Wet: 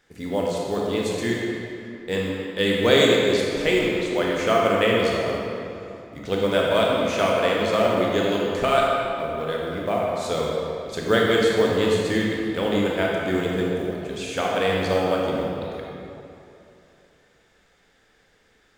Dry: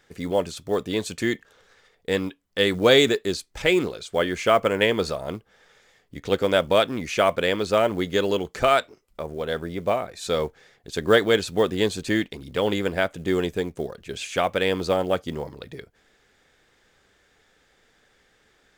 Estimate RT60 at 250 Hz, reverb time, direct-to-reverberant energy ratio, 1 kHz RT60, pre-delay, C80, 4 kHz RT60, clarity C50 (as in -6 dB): 2.8 s, 2.9 s, -3.0 dB, 2.8 s, 21 ms, 0.0 dB, 1.8 s, -1.5 dB